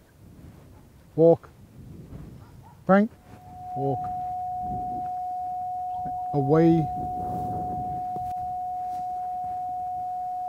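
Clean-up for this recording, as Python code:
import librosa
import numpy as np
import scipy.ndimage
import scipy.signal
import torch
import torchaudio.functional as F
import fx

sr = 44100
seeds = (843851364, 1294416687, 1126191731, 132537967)

y = fx.notch(x, sr, hz=730.0, q=30.0)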